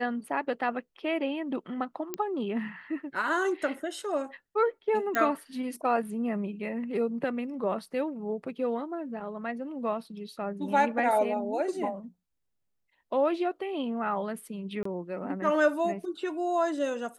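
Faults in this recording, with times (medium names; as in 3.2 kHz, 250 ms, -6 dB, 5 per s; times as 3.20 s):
2.14 s: pop -17 dBFS
5.15 s: pop -14 dBFS
14.83–14.85 s: dropout 24 ms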